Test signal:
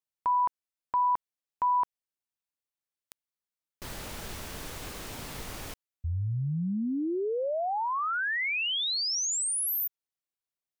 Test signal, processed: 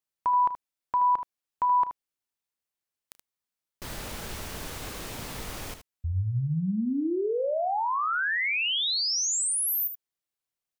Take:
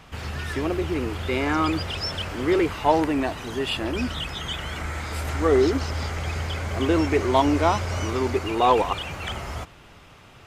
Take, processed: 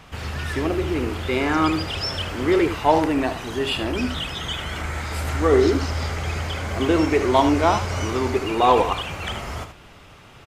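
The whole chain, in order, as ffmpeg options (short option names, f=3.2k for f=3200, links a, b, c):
-af "aecho=1:1:32|76:0.158|0.316,volume=2dB"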